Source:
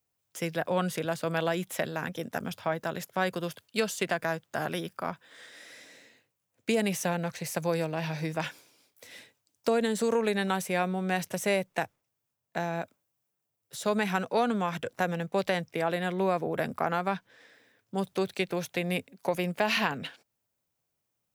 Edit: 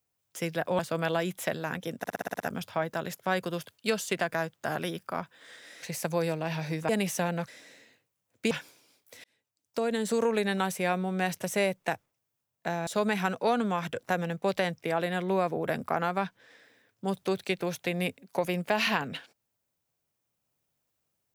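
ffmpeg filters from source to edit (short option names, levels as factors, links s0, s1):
-filter_complex "[0:a]asplit=15[s0][s1][s2][s3][s4][s5][s6][s7][s8][s9][s10][s11][s12][s13][s14];[s0]atrim=end=0.792[s15];[s1]atrim=start=1.108:end=2.362[s16];[s2]atrim=start=2.298:end=2.362[s17];[s3]atrim=start=2.298:end=2.362[s18];[s4]atrim=start=2.298:end=2.362[s19];[s5]atrim=start=2.298:end=2.362[s20];[s6]atrim=start=2.298:end=2.362[s21];[s7]atrim=start=2.298:end=2.362[s22];[s8]atrim=start=2.298:end=5.722[s23];[s9]atrim=start=7.338:end=8.412[s24];[s10]atrim=start=6.748:end=7.342[s25];[s11]atrim=start=5.718:end=6.752[s26];[s12]atrim=start=8.408:end=9.14,asetpts=PTS-STARTPTS,afade=t=out:st=0.728:d=0.004:c=hsin[s27];[s13]atrim=start=9.14:end=12.772,asetpts=PTS-STARTPTS,afade=t=in:d=0.89[s28];[s14]atrim=start=13.768[s29];[s15][s16]acrossfade=d=0.004:c1=hsin:c2=hsin[s30];[s30][s17]acrossfade=d=0.004:c1=hsin:c2=hsin[s31];[s31][s18]acrossfade=d=0.004:c1=hsin:c2=hsin[s32];[s32][s19]acrossfade=d=0.004:c1=hsin:c2=hsin[s33];[s33][s20]acrossfade=d=0.004:c1=hsin:c2=hsin[s34];[s34][s21]acrossfade=d=0.004:c1=hsin:c2=hsin[s35];[s35][s22]acrossfade=d=0.004:c1=hsin:c2=hsin[s36];[s36][s23]acrossfade=d=0.004:c1=hsin:c2=hsin[s37];[s37][s24]acrossfade=d=0.004:c1=hsin:c2=hsin[s38];[s38][s25]acrossfade=d=0.004:c1=hsin:c2=hsin[s39];[s39][s26]acrossfade=d=0.004:c1=hsin:c2=hsin[s40];[s27][s28]concat=n=2:v=0:a=1[s41];[s40][s41]acrossfade=d=0.004:c1=hsin:c2=hsin[s42];[s42][s29]acrossfade=d=0.004:c1=hsin:c2=hsin"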